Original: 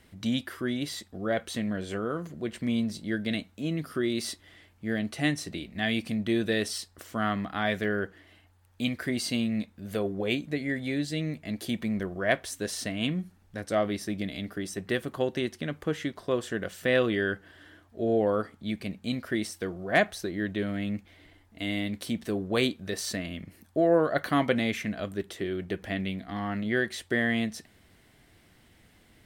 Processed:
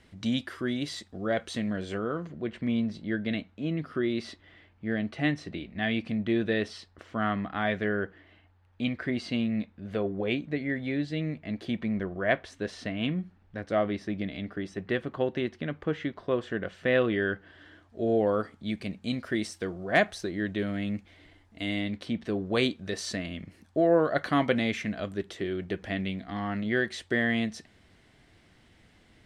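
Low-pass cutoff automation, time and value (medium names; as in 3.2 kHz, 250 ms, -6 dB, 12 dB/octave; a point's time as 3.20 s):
1.79 s 7.1 kHz
2.42 s 3 kHz
17.23 s 3 kHz
18.00 s 8 kHz
21.71 s 8 kHz
22.11 s 3.1 kHz
22.54 s 6.7 kHz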